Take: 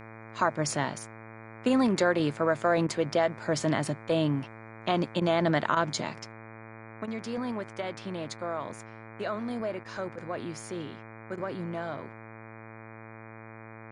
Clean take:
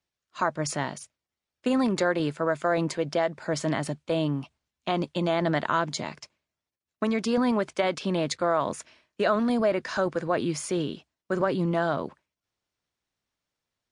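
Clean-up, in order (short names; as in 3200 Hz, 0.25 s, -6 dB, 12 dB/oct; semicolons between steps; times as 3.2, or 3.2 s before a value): de-hum 111.4 Hz, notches 22; interpolate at 2.87/5.2/5.75/7.06/9.84/10.16/11.36, 14 ms; gain 0 dB, from 6.32 s +9.5 dB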